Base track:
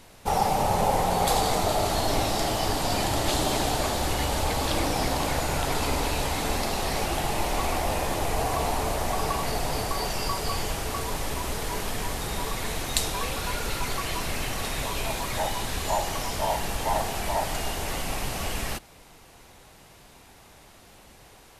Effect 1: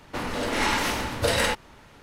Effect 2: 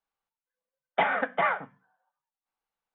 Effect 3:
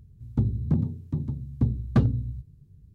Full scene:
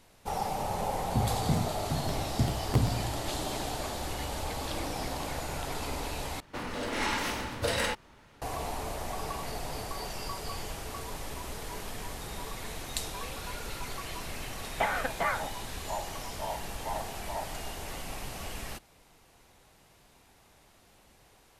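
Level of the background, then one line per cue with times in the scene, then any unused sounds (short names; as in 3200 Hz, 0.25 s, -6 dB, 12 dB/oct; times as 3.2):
base track -9 dB
0.78 add 3 -5 dB + crackling interface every 0.13 s repeat
6.4 replace with 1 -6.5 dB
13.82 add 2 -4.5 dB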